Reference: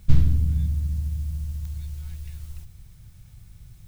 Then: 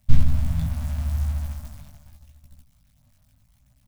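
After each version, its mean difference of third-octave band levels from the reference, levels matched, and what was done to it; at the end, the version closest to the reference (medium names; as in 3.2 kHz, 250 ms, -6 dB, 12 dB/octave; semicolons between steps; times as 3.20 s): 7.5 dB: jump at every zero crossing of -28 dBFS; gate -26 dBFS, range -28 dB; chorus voices 2, 0.8 Hz, delay 18 ms, depth 2.7 ms; elliptic band-stop 260–580 Hz, stop band 40 dB; trim +3 dB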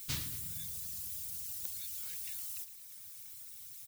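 12.0 dB: reverb removal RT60 1.3 s; differentiator; crackle 160 per s -69 dBFS; on a send: feedback delay 113 ms, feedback 57%, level -11.5 dB; on the sum: trim +13 dB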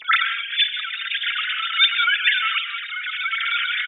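22.0 dB: formants replaced by sine waves; level rider gain up to 15 dB; gated-style reverb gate 210 ms rising, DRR 9 dB; endless flanger 4.2 ms +1.3 Hz; trim -2 dB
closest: first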